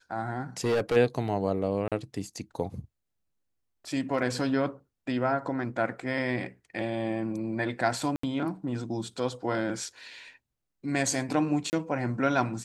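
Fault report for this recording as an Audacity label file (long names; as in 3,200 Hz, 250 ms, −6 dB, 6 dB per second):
0.640000	0.970000	clipping −22 dBFS
1.880000	1.920000	drop-out 37 ms
4.220000	4.220000	drop-out 2.6 ms
8.160000	8.230000	drop-out 74 ms
11.700000	11.730000	drop-out 29 ms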